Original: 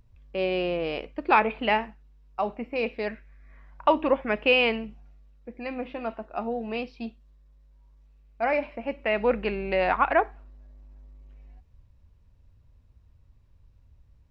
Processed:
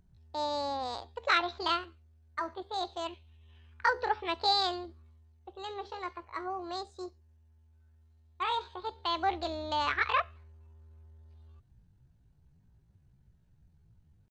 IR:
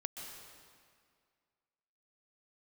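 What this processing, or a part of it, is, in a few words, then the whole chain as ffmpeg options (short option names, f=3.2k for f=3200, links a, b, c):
chipmunk voice: -af "asetrate=70004,aresample=44100,atempo=0.629961,volume=-6.5dB"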